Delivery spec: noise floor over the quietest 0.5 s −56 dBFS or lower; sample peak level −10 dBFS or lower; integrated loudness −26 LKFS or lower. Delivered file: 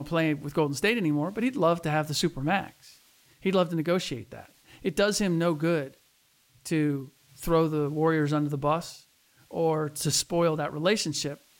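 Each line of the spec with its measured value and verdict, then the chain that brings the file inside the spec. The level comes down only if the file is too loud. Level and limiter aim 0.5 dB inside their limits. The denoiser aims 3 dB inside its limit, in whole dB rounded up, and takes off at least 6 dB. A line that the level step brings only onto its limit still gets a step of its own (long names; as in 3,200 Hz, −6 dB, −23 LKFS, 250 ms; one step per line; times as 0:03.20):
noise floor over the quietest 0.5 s −65 dBFS: in spec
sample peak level −12.0 dBFS: in spec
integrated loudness −27.0 LKFS: in spec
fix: no processing needed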